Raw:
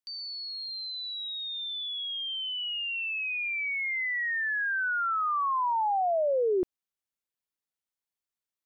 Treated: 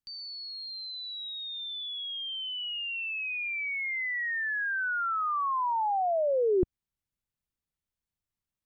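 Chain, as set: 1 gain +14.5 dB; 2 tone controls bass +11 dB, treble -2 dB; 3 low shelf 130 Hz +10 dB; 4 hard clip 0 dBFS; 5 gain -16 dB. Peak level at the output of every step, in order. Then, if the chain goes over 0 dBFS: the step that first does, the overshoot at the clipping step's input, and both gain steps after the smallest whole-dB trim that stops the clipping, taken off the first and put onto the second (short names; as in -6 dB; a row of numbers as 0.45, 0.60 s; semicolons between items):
-7.5, -5.0, -3.5, -3.5, -19.5 dBFS; no overload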